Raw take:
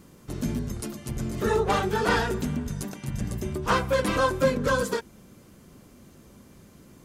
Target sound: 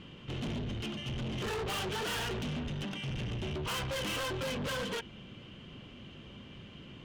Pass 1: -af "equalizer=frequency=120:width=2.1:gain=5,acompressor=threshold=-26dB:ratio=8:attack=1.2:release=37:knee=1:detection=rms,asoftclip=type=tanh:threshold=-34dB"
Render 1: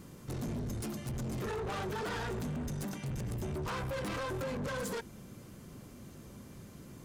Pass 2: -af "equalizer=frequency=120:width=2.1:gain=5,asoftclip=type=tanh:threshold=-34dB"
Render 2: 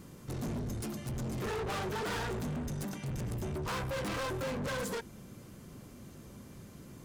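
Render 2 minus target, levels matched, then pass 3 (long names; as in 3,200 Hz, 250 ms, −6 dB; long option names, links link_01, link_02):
4,000 Hz band −7.0 dB
-af "lowpass=frequency=3000:width_type=q:width=9,equalizer=frequency=120:width=2.1:gain=5,asoftclip=type=tanh:threshold=-34dB"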